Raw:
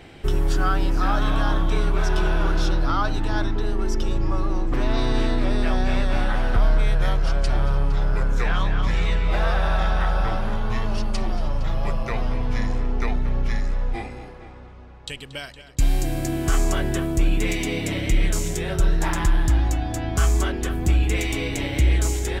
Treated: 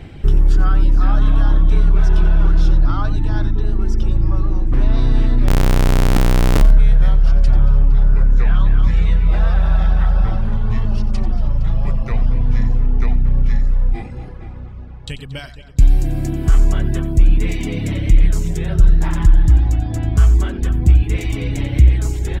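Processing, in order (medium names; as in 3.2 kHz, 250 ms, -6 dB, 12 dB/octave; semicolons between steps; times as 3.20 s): reverb removal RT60 0.55 s; tone controls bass +13 dB, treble -3 dB; in parallel at +0.5 dB: compression, threshold -24 dBFS, peak gain reduction 21 dB; 5.48–6.62 s: on the sum: Schmitt trigger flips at -20.5 dBFS; 7.85–8.66 s: distance through air 64 m; on a send: delay 90 ms -14 dB; on the sum: trim -4.5 dB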